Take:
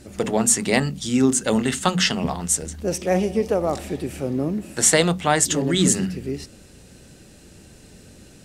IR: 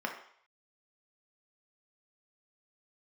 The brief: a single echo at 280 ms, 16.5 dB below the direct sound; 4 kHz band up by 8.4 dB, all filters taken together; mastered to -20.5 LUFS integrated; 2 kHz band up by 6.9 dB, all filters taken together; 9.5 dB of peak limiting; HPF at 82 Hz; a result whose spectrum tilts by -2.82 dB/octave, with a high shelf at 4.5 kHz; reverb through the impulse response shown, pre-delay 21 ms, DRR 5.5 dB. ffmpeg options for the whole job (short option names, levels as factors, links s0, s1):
-filter_complex "[0:a]highpass=82,equalizer=f=2000:t=o:g=5.5,equalizer=f=4000:t=o:g=6.5,highshelf=f=4500:g=5,alimiter=limit=0.422:level=0:latency=1,aecho=1:1:280:0.15,asplit=2[s0][s1];[1:a]atrim=start_sample=2205,adelay=21[s2];[s1][s2]afir=irnorm=-1:irlink=0,volume=0.282[s3];[s0][s3]amix=inputs=2:normalize=0,volume=0.944"